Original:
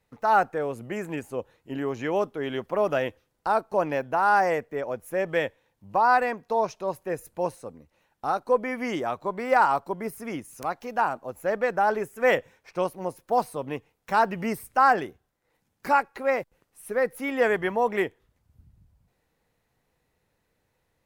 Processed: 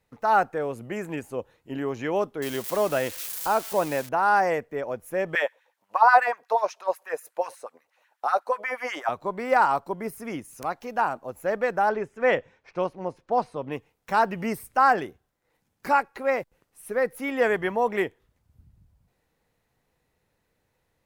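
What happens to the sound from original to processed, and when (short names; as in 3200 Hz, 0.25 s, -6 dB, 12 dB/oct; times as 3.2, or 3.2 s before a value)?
2.42–4.09 switching spikes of -24.5 dBFS
5.35–9.09 LFO high-pass sine 8.2 Hz 530–1800 Hz
11.89–13.72 air absorption 120 m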